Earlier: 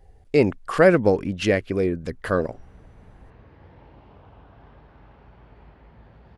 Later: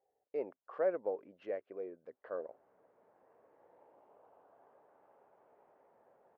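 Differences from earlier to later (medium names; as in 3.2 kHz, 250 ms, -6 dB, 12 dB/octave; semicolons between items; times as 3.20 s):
speech -8.0 dB; master: add ladder band-pass 670 Hz, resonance 35%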